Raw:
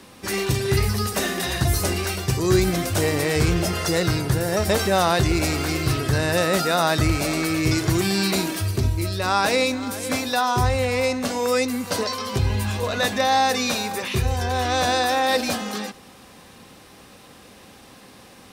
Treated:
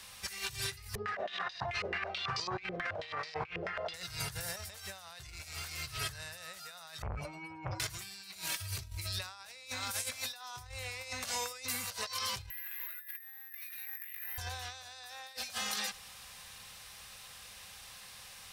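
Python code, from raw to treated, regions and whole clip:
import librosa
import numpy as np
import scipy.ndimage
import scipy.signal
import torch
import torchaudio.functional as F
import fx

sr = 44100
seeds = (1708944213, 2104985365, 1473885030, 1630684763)

y = fx.chain(x, sr, fx.highpass(hz=220.0, slope=12),
    fx.air_absorb(metres=83.0),
    fx.filter_held_lowpass(hz=9.2, low_hz=450.0, high_hz=4900.0), at=(0.95, 3.94))
y = fx.chain(y, sr, fx.spec_expand(power=2.7),
    fx.transformer_sat(knee_hz=600.0), at=(7.02, 7.8))
y = fx.chain(y, sr, fx.bandpass_q(hz=1900.0, q=10.0),
    fx.resample_bad(factor=3, down='filtered', up='zero_stuff'),
    fx.env_flatten(amount_pct=70), at=(12.5, 14.38))
y = fx.tone_stack(y, sr, knobs='10-0-10')
y = fx.over_compress(y, sr, threshold_db=-36.0, ratio=-0.5)
y = y * 10.0 ** (-4.0 / 20.0)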